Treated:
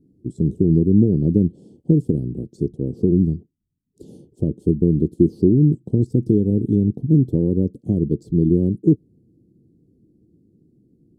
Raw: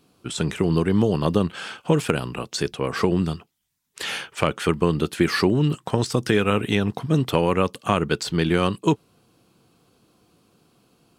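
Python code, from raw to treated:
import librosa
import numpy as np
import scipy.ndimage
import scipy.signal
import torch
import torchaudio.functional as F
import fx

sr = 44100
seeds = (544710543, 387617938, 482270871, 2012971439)

y = scipy.signal.sosfilt(scipy.signal.ellip(3, 1.0, 70, [340.0, 7700.0], 'bandstop', fs=sr, output='sos'), x)
y = fx.air_absorb(y, sr, metres=370.0)
y = y * 10.0 ** (7.0 / 20.0)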